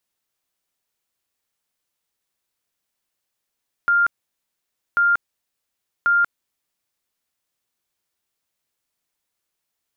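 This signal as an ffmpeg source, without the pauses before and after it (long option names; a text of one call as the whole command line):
ffmpeg -f lavfi -i "aevalsrc='0.211*sin(2*PI*1400*mod(t,1.09))*lt(mod(t,1.09),260/1400)':duration=3.27:sample_rate=44100" out.wav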